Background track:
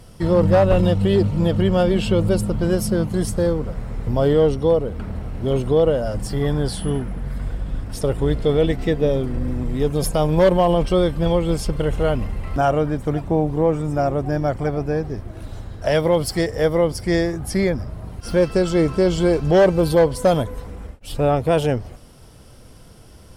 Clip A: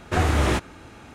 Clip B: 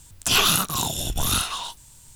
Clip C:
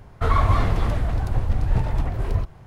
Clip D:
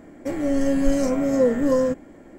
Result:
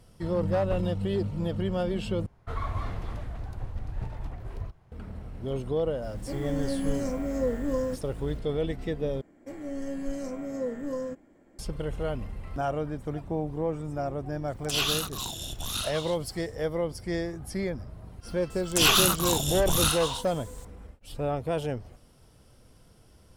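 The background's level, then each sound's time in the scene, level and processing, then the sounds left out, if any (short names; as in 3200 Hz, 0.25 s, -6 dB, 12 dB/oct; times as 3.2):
background track -11.5 dB
2.26 replace with C -13.5 dB
6.02 add D -9.5 dB + bit-crush 8-bit
9.21 replace with D -13.5 dB
14.43 add B -12.5 dB, fades 0.10 s + bell 3900 Hz +6 dB 1.4 oct
18.5 add B -2 dB
not used: A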